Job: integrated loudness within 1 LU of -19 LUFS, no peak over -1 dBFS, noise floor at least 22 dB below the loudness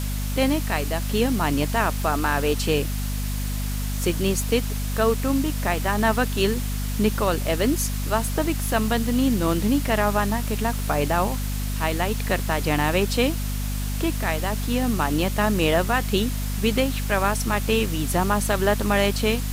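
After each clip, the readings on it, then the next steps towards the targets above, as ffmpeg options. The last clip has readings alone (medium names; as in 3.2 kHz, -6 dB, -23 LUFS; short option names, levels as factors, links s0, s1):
hum 50 Hz; highest harmonic 250 Hz; hum level -24 dBFS; noise floor -27 dBFS; noise floor target -46 dBFS; loudness -23.5 LUFS; peak level -7.5 dBFS; loudness target -19.0 LUFS
-> -af "bandreject=f=50:t=h:w=4,bandreject=f=100:t=h:w=4,bandreject=f=150:t=h:w=4,bandreject=f=200:t=h:w=4,bandreject=f=250:t=h:w=4"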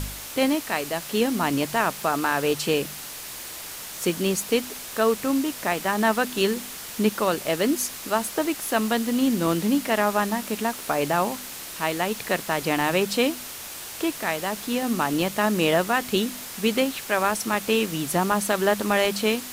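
hum not found; noise floor -37 dBFS; noise floor target -47 dBFS
-> -af "afftdn=nr=10:nf=-37"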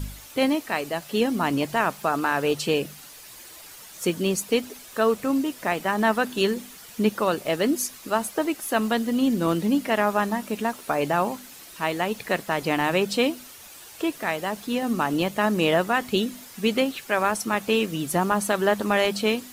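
noise floor -45 dBFS; noise floor target -47 dBFS
-> -af "afftdn=nr=6:nf=-45"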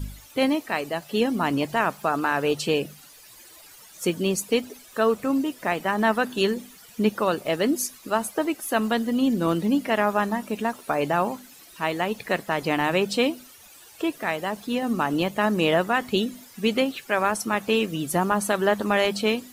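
noise floor -49 dBFS; loudness -24.5 LUFS; peak level -8.5 dBFS; loudness target -19.0 LUFS
-> -af "volume=1.88"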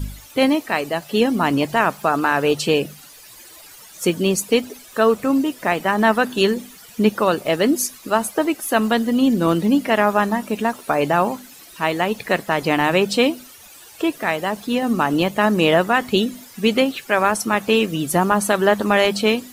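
loudness -19.0 LUFS; peak level -3.0 dBFS; noise floor -44 dBFS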